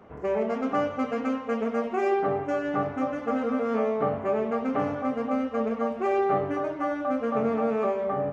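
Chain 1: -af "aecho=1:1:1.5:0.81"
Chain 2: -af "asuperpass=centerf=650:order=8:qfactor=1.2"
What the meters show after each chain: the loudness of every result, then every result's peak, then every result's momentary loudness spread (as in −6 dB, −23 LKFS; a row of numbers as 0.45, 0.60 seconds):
−26.0, −30.5 LKFS; −11.0, −16.0 dBFS; 4, 5 LU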